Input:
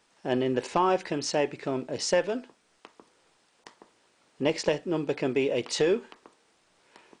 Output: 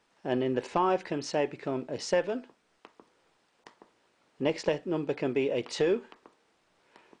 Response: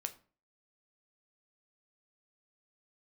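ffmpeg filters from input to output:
-af "highshelf=frequency=5000:gain=-9.5,volume=-2dB"

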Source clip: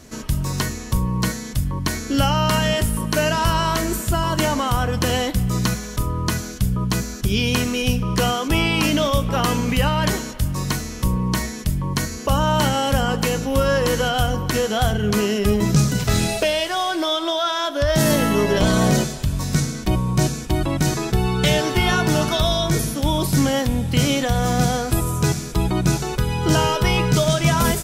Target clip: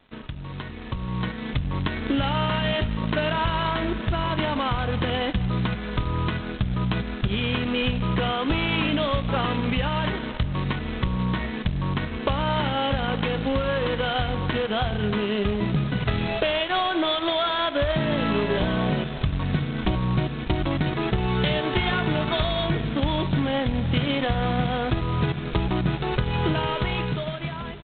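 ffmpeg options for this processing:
ffmpeg -i in.wav -filter_complex "[0:a]acompressor=threshold=-26dB:ratio=8,asplit=2[link_01][link_02];[link_02]aecho=0:1:163:0.0794[link_03];[link_01][link_03]amix=inputs=2:normalize=0,aeval=exprs='sgn(val(0))*max(abs(val(0))-0.00668,0)':channel_layout=same,dynaudnorm=framelen=130:gausssize=17:maxgain=11dB,volume=-4dB" -ar 8000 -c:a adpcm_g726 -b:a 16k out.wav

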